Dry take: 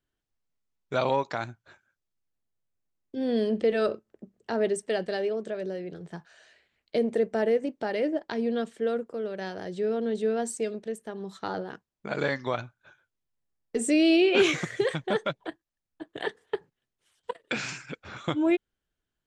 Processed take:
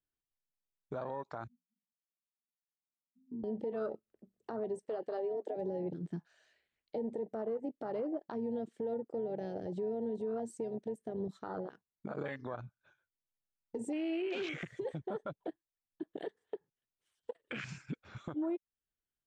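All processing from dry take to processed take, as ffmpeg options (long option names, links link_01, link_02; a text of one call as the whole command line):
ffmpeg -i in.wav -filter_complex "[0:a]asettb=1/sr,asplit=3[link_01][link_02][link_03];[link_01]atrim=end=1.474[link_04];[link_02]atrim=start=1.47:end=3.44,asetpts=PTS-STARTPTS,afade=type=in:duration=0.004:curve=qsin,afade=type=out:start_time=1.966:duration=0.004:curve=qsin,acompressor=threshold=-38dB:ratio=10:attack=3.2:release=140:knee=1:detection=peak,asuperpass=centerf=210:order=20:qfactor=2.7[link_05];[link_03]atrim=start=3.436[link_06];[link_04][link_05]acrossfade=duration=0.004:curve1=hsin:curve2=qsin[link_07];[link_07][link_06]acrossfade=duration=0.004:curve1=qsin:curve2=hsin,asettb=1/sr,asplit=3[link_08][link_09][link_10];[link_08]atrim=end=4.854[link_11];[link_09]atrim=start=4.85:end=5.56,asetpts=PTS-STARTPTS,afade=type=in:duration=0.004:curve=qsin,afade=type=out:start_time=0.706:duration=0.004:curve=qsin,highpass=frequency=290:width=0.5412,highpass=frequency=290:width=1.3066,highshelf=frequency=8600:gain=-5[link_12];[link_10]atrim=start=5.556[link_13];[link_11][link_12]acrossfade=duration=0.004:curve1=hsin:curve2=qsin[link_14];[link_14][link_13]acrossfade=duration=0.004:curve1=qsin:curve2=hsin,afwtdn=0.0316,acompressor=threshold=-38dB:ratio=2.5,alimiter=level_in=9dB:limit=-24dB:level=0:latency=1:release=109,volume=-9dB,volume=3.5dB" out.wav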